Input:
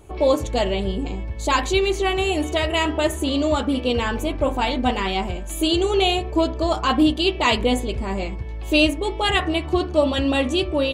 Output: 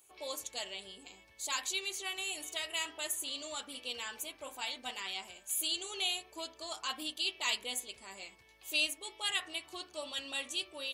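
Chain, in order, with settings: differentiator; trim -3.5 dB

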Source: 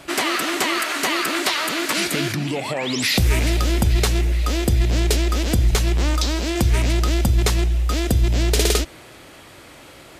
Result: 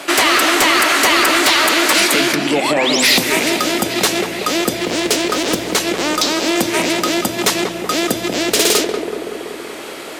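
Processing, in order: filtered feedback delay 189 ms, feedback 73%, low-pass 1.1 kHz, level -6 dB; in parallel at -2.5 dB: compression, threshold -26 dBFS, peak gain reduction 16 dB; on the sum: Bessel high-pass 330 Hz, order 4; sine folder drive 7 dB, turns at -4.5 dBFS; 4.77–5.80 s: loudspeaker Doppler distortion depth 0.4 ms; trim -2.5 dB

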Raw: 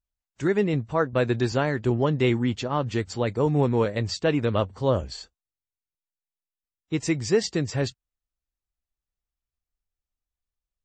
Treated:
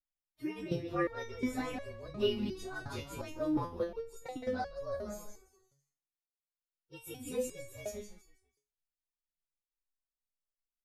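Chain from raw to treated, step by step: frequency axis rescaled in octaves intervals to 114%; 3.63–4.47 s: level held to a coarse grid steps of 22 dB; frequency-shifting echo 166 ms, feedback 37%, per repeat -49 Hz, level -8 dB; resonator arpeggio 2.8 Hz 140–560 Hz; trim +4 dB

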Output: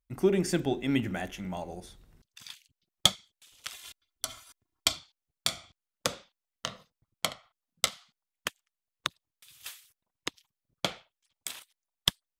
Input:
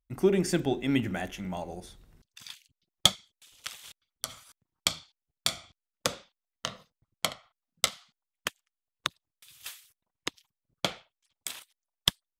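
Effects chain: 3.72–4.97 s: comb 2.9 ms, depth 82%; trim -1 dB

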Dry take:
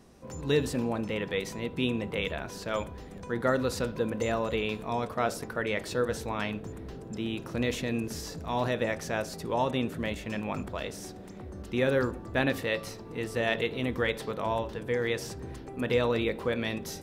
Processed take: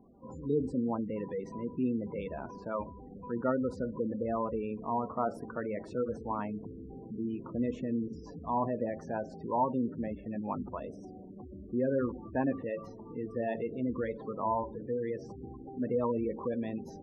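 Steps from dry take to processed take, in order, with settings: spectral gate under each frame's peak -15 dB strong; ten-band graphic EQ 250 Hz +8 dB, 1 kHz +12 dB, 2 kHz -7 dB, 4 kHz -10 dB, 8 kHz -9 dB; trim -8 dB

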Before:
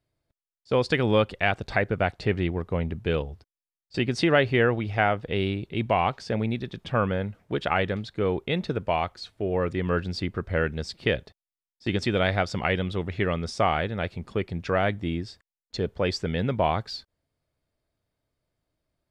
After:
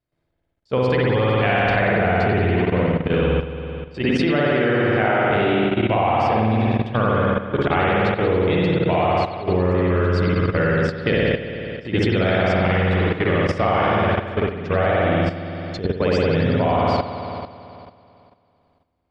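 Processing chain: treble shelf 5.2 kHz -8 dB; spring tank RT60 2.4 s, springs 55 ms, chirp 40 ms, DRR -7 dB; level held to a coarse grid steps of 11 dB; trim +4 dB

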